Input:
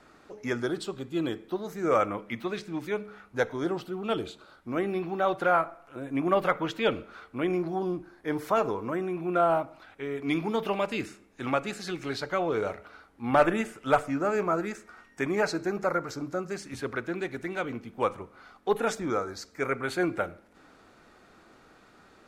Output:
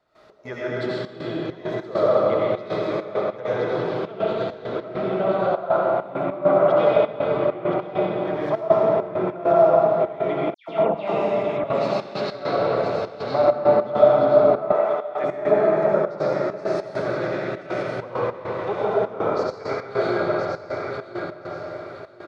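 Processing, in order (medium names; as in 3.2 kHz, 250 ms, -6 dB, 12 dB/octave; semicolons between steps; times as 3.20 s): high-pass 43 Hz; small resonant body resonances 630/2000 Hz, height 9 dB, ringing for 45 ms; low-pass that closes with the level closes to 1 kHz, closed at -21 dBFS; graphic EQ 125/250/500/1000/2000/4000/8000 Hz +6/-5/+4/+4/-3/+7/-6 dB; feedback delay 1021 ms, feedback 30%, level -5.5 dB; algorithmic reverb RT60 3.7 s, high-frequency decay 0.75×, pre-delay 50 ms, DRR -9 dB; trance gate ".x.xxxx.xx" 100 bpm -12 dB; 10.54–11.64 s: phase dispersion lows, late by 144 ms, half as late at 2.3 kHz; 14.72–15.24 s: three-band isolator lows -18 dB, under 410 Hz, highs -14 dB, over 4.6 kHz; trim -6 dB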